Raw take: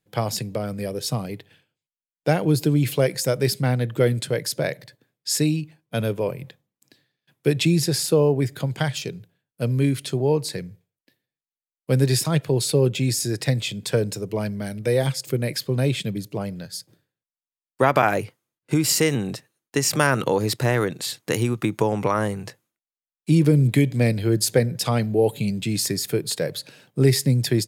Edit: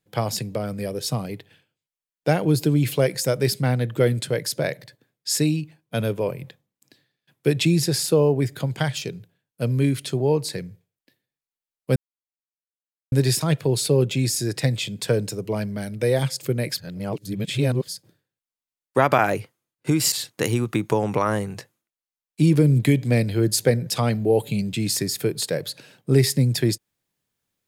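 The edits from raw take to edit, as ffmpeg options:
-filter_complex "[0:a]asplit=5[a][b][c][d][e];[a]atrim=end=11.96,asetpts=PTS-STARTPTS,afade=t=out:st=11.956:d=0.004:c=hsin,apad=pad_dur=1.16[f];[b]atrim=start=11.96:end=15.622,asetpts=PTS-STARTPTS,afade=t=in:d=0.004:c=hsin[g];[c]atrim=start=15.618:end=16.722,asetpts=PTS-STARTPTS,areverse[h];[d]atrim=start=16.718:end=18.962[i];[e]atrim=start=21.008[j];[f][g]concat=n=2:v=0:a=1[k];[k][h]acrossfade=d=0.004:c1=hsin:c2=hsin[l];[l][i]acrossfade=d=0.004:c1=hsin:c2=hsin[m];[m][j]acrossfade=d=0.004:c1=hsin:c2=hsin"

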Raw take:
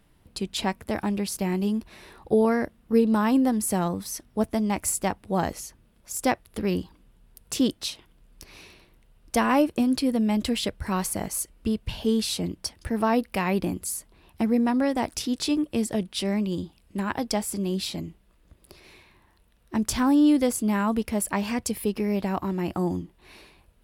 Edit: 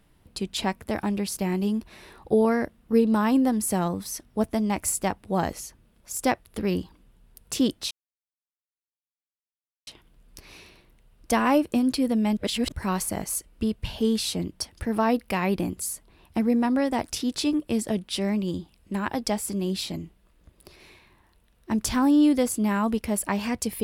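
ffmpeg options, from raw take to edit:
-filter_complex "[0:a]asplit=4[a][b][c][d];[a]atrim=end=7.91,asetpts=PTS-STARTPTS,afade=t=out:st=7.906:d=0.004:c=hsin,apad=pad_dur=1.96[e];[b]atrim=start=7.91:end=10.412,asetpts=PTS-STARTPTS,afade=t=in:d=0.004:c=hsin[f];[c]atrim=start=10.408:end=10.762,asetpts=PTS-STARTPTS,areverse[g];[d]atrim=start=10.758[h];[e][f]concat=n=2:v=0:a=1[i];[i][g]acrossfade=d=0.004:c1=hsin:c2=hsin[j];[j][h]acrossfade=d=0.004:c1=hsin:c2=hsin"

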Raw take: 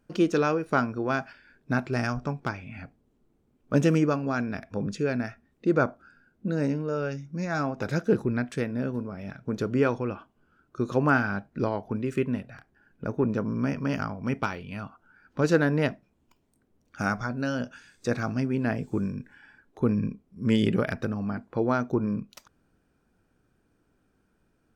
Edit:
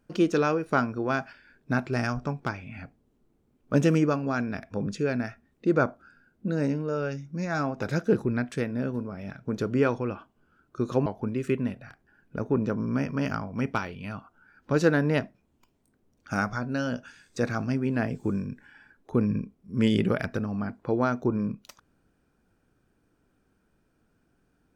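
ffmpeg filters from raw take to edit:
-filter_complex "[0:a]asplit=2[a][b];[a]atrim=end=11.062[c];[b]atrim=start=11.738[d];[c][d]acrossfade=d=0.004:c1=hsin:c2=hsin"

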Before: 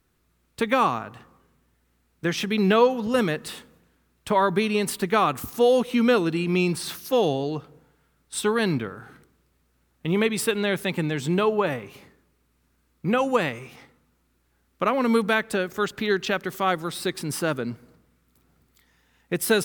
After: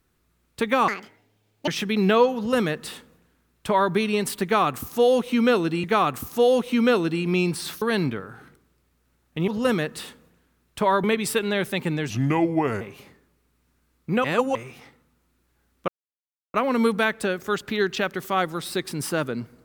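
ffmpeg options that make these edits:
-filter_complex "[0:a]asplit=12[a][b][c][d][e][f][g][h][i][j][k][l];[a]atrim=end=0.884[m];[b]atrim=start=0.88:end=2.29,asetpts=PTS-STARTPTS,asetrate=78057,aresample=44100[n];[c]atrim=start=2.286:end=6.452[o];[d]atrim=start=5.048:end=7.032[p];[e]atrim=start=8.498:end=10.162[q];[f]atrim=start=2.968:end=4.532[r];[g]atrim=start=10.158:end=11.224[s];[h]atrim=start=11.22:end=11.77,asetpts=PTS-STARTPTS,asetrate=33957,aresample=44100[t];[i]atrim=start=11.766:end=13.202[u];[j]atrim=start=13.198:end=13.512,asetpts=PTS-STARTPTS,areverse[v];[k]atrim=start=13.508:end=14.84,asetpts=PTS-STARTPTS,afade=t=out:st=1.328:d=0.004:c=hsin,apad=pad_dur=0.66[w];[l]atrim=start=14.84,asetpts=PTS-STARTPTS,afade=t=in:d=0.004:c=hsin[x];[m][n]acrossfade=d=0.004:c1=hsin:c2=hsin[y];[y][o]acrossfade=d=0.004:c1=hsin:c2=hsin[z];[z][p]acrossfade=d=0.004:c1=hsin:c2=hsin[aa];[aa][q]acrossfade=d=0.004:c1=hsin:c2=hsin[ab];[ab][r]acrossfade=d=0.004:c1=hsin:c2=hsin[ac];[ac][s]acrossfade=d=0.004:c1=hsin:c2=hsin[ad];[ad][t]acrossfade=d=0.004:c1=hsin:c2=hsin[ae];[ae][u]acrossfade=d=0.004:c1=hsin:c2=hsin[af];[af][v]acrossfade=d=0.004:c1=hsin:c2=hsin[ag];[w][x]concat=n=2:v=0:a=1[ah];[ag][ah]acrossfade=d=0.004:c1=hsin:c2=hsin"

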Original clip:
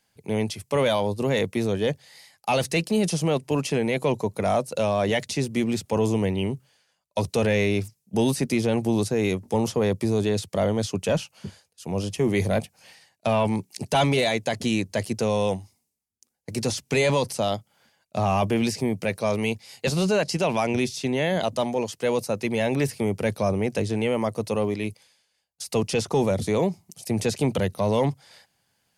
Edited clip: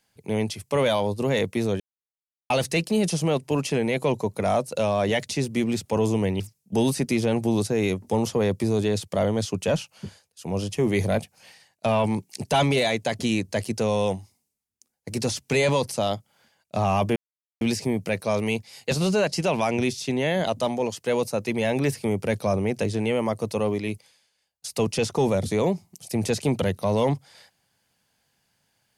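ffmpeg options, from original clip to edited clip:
-filter_complex "[0:a]asplit=5[a][b][c][d][e];[a]atrim=end=1.8,asetpts=PTS-STARTPTS,afade=t=out:st=1.796:d=0.004:c=hsin[f];[b]atrim=start=1.8:end=2.5,asetpts=PTS-STARTPTS,volume=0[g];[c]atrim=start=2.5:end=6.402,asetpts=PTS-STARTPTS,afade=t=in:d=0.004:c=hsin[h];[d]atrim=start=7.808:end=18.57,asetpts=PTS-STARTPTS,afade=t=out:st=10.758:d=0.004:c=hsin,apad=pad_dur=0.45[i];[e]atrim=start=18.57,asetpts=PTS-STARTPTS,afade=t=in:d=0.004:c=hsin[j];[f][g][h]concat=n=3:v=0:a=1[k];[i][j]concat=n=2:v=0:a=1[l];[k][l]acrossfade=d=0.004:c1=hsin:c2=hsin"

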